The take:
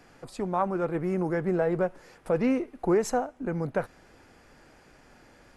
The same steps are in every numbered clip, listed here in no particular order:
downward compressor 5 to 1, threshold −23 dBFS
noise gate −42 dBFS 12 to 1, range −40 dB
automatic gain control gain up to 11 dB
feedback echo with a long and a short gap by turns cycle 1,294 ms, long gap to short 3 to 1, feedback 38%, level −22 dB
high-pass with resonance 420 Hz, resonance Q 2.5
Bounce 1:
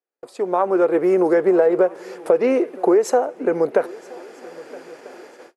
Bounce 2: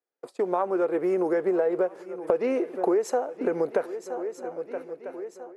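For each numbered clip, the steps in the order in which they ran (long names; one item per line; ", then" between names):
high-pass with resonance, then downward compressor, then feedback echo with a long and a short gap by turns, then automatic gain control, then noise gate
noise gate, then feedback echo with a long and a short gap by turns, then automatic gain control, then high-pass with resonance, then downward compressor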